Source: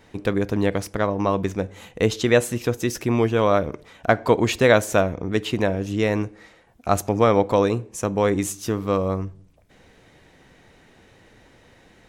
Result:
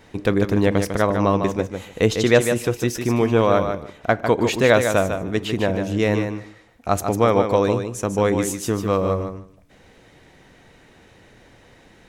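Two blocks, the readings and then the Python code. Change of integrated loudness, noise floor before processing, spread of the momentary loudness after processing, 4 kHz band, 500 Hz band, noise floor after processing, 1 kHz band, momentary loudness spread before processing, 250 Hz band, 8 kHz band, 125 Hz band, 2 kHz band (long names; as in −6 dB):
+1.5 dB, −54 dBFS, 9 LU, +1.5 dB, +1.5 dB, −52 dBFS, +1.5 dB, 9 LU, +2.0 dB, +1.5 dB, +2.0 dB, +1.5 dB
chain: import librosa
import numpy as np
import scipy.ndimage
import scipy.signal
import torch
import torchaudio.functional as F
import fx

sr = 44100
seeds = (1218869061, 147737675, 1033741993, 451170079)

y = fx.rider(x, sr, range_db=10, speed_s=2.0)
y = fx.echo_feedback(y, sr, ms=150, feedback_pct=15, wet_db=-7)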